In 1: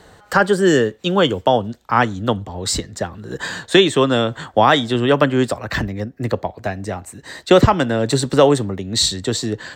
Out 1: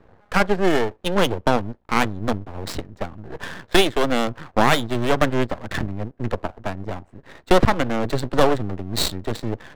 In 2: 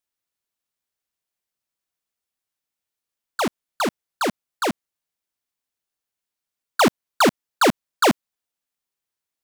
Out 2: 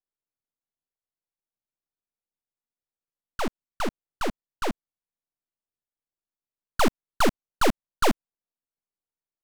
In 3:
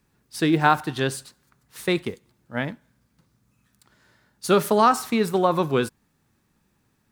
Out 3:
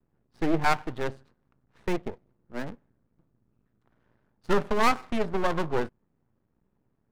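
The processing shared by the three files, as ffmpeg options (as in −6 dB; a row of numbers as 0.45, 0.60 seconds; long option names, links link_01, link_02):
-af "adynamicsmooth=sensitivity=1.5:basefreq=1000,aeval=exprs='max(val(0),0)':channel_layout=same"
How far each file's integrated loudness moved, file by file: −5.0, −6.0, −6.5 LU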